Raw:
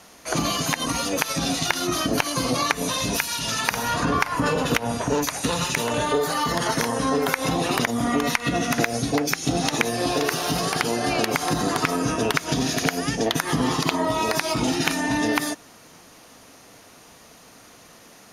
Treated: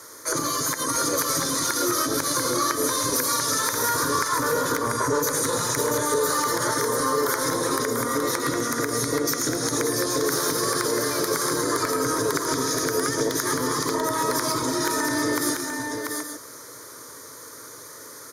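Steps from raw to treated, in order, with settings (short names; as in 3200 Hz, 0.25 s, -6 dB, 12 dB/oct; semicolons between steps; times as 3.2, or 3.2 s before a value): HPF 100 Hz 24 dB/oct; high shelf 7100 Hz +6 dB; in parallel at +1 dB: limiter -16 dBFS, peak gain reduction 11.5 dB; on the sum: compressor, threshold -18 dBFS, peak gain reduction 7 dB; soft clip -10 dBFS, distortion -25 dB; fixed phaser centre 740 Hz, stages 6; on a send: tapped delay 0.111/0.689/0.825 s -12.5/-4.5/-10 dB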